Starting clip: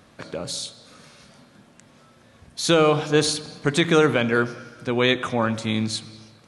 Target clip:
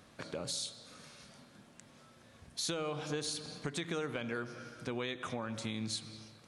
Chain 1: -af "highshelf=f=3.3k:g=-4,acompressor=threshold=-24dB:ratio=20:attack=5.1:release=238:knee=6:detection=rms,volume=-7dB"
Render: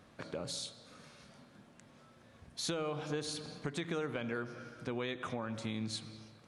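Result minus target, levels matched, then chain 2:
8000 Hz band -3.0 dB
-af "highshelf=f=3.3k:g=3.5,acompressor=threshold=-24dB:ratio=20:attack=5.1:release=238:knee=6:detection=rms,volume=-7dB"

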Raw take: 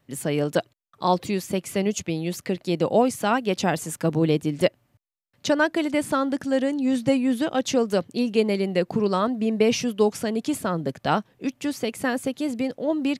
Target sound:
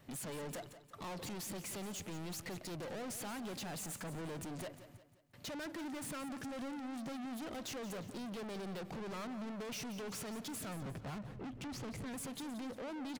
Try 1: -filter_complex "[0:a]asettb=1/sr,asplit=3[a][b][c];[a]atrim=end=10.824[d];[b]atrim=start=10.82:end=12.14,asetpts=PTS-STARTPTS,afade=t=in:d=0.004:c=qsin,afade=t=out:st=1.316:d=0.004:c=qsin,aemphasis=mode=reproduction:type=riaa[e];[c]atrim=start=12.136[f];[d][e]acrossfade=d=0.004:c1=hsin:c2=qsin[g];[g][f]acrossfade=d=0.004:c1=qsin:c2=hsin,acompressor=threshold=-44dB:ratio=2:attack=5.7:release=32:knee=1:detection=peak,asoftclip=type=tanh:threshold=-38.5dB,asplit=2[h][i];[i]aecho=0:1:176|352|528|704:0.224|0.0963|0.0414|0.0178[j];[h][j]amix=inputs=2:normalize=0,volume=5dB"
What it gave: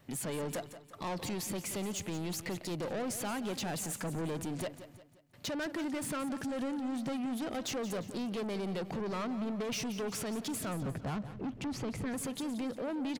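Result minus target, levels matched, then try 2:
soft clip: distortion -4 dB
-filter_complex "[0:a]asettb=1/sr,asplit=3[a][b][c];[a]atrim=end=10.824[d];[b]atrim=start=10.82:end=12.14,asetpts=PTS-STARTPTS,afade=t=in:d=0.004:c=qsin,afade=t=out:st=1.316:d=0.004:c=qsin,aemphasis=mode=reproduction:type=riaa[e];[c]atrim=start=12.136[f];[d][e]acrossfade=d=0.004:c1=hsin:c2=qsin[g];[g][f]acrossfade=d=0.004:c1=qsin:c2=hsin,acompressor=threshold=-44dB:ratio=2:attack=5.7:release=32:knee=1:detection=peak,asoftclip=type=tanh:threshold=-47.5dB,asplit=2[h][i];[i]aecho=0:1:176|352|528|704:0.224|0.0963|0.0414|0.0178[j];[h][j]amix=inputs=2:normalize=0,volume=5dB"

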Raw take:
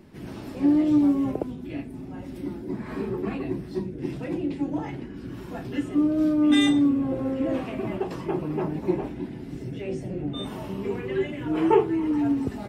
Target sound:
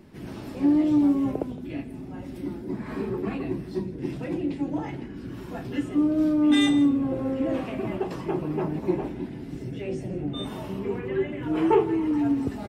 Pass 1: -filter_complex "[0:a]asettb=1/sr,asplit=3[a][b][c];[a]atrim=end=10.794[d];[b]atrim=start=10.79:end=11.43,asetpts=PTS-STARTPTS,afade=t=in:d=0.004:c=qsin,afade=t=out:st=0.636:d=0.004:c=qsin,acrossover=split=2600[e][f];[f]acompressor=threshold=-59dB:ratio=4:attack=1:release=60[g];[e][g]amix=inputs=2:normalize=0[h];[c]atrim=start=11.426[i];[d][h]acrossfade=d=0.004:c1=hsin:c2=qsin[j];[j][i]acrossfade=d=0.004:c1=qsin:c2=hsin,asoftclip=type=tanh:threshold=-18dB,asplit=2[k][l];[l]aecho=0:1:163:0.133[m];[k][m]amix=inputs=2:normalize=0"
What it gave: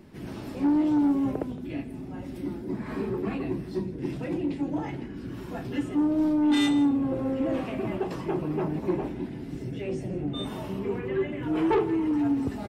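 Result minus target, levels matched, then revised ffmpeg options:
soft clip: distortion +14 dB
-filter_complex "[0:a]asettb=1/sr,asplit=3[a][b][c];[a]atrim=end=10.794[d];[b]atrim=start=10.79:end=11.43,asetpts=PTS-STARTPTS,afade=t=in:d=0.004:c=qsin,afade=t=out:st=0.636:d=0.004:c=qsin,acrossover=split=2600[e][f];[f]acompressor=threshold=-59dB:ratio=4:attack=1:release=60[g];[e][g]amix=inputs=2:normalize=0[h];[c]atrim=start=11.426[i];[d][h]acrossfade=d=0.004:c1=hsin:c2=qsin[j];[j][i]acrossfade=d=0.004:c1=qsin:c2=hsin,asoftclip=type=tanh:threshold=-8.5dB,asplit=2[k][l];[l]aecho=0:1:163:0.133[m];[k][m]amix=inputs=2:normalize=0"

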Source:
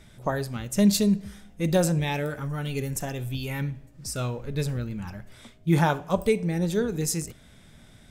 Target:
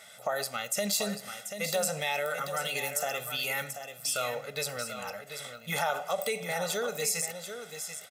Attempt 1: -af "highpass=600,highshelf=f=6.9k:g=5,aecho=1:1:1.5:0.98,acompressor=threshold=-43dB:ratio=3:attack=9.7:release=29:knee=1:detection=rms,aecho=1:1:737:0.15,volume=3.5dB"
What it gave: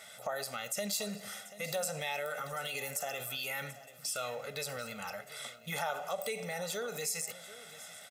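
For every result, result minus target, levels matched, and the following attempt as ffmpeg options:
compressor: peak gain reduction +5.5 dB; echo-to-direct -7.5 dB
-af "highpass=600,highshelf=f=6.9k:g=5,aecho=1:1:1.5:0.98,acompressor=threshold=-34.5dB:ratio=3:attack=9.7:release=29:knee=1:detection=rms,aecho=1:1:737:0.15,volume=3.5dB"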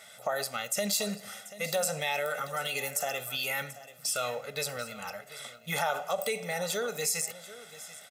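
echo-to-direct -7.5 dB
-af "highpass=600,highshelf=f=6.9k:g=5,aecho=1:1:1.5:0.98,acompressor=threshold=-34.5dB:ratio=3:attack=9.7:release=29:knee=1:detection=rms,aecho=1:1:737:0.355,volume=3.5dB"

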